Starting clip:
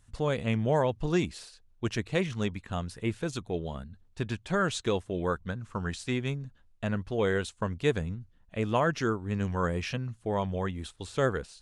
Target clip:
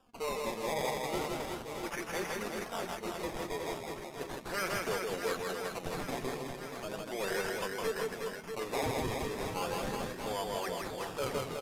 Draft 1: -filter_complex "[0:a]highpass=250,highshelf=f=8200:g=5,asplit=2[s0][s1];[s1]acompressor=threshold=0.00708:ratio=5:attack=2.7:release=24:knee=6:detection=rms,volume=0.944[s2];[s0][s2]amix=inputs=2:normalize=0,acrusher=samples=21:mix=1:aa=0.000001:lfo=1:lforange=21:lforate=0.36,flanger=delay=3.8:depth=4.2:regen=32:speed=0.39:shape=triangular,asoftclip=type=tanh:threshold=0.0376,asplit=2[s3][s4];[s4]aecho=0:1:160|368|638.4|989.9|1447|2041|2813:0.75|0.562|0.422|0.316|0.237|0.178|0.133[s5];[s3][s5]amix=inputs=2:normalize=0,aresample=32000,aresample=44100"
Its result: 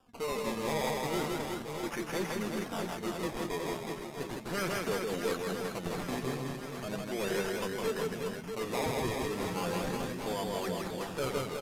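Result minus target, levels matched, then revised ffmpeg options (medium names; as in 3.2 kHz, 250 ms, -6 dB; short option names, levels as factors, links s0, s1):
250 Hz band +3.5 dB
-filter_complex "[0:a]highpass=500,highshelf=f=8200:g=5,asplit=2[s0][s1];[s1]acompressor=threshold=0.00708:ratio=5:attack=2.7:release=24:knee=6:detection=rms,volume=0.944[s2];[s0][s2]amix=inputs=2:normalize=0,acrusher=samples=21:mix=1:aa=0.000001:lfo=1:lforange=21:lforate=0.36,flanger=delay=3.8:depth=4.2:regen=32:speed=0.39:shape=triangular,asoftclip=type=tanh:threshold=0.0376,asplit=2[s3][s4];[s4]aecho=0:1:160|368|638.4|989.9|1447|2041|2813:0.75|0.562|0.422|0.316|0.237|0.178|0.133[s5];[s3][s5]amix=inputs=2:normalize=0,aresample=32000,aresample=44100"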